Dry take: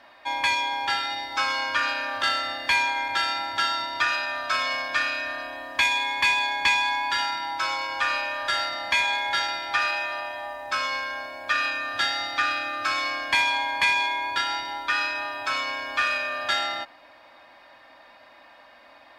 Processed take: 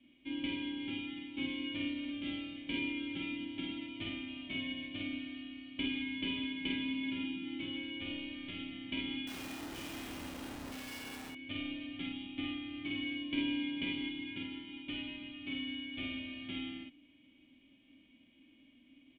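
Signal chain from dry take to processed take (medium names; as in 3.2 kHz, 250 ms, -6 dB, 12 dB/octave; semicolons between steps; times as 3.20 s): formants flattened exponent 0.1; cascade formant filter i; 9.27–11.30 s: Schmitt trigger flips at -54.5 dBFS; doubling 49 ms -3 dB; trim +2.5 dB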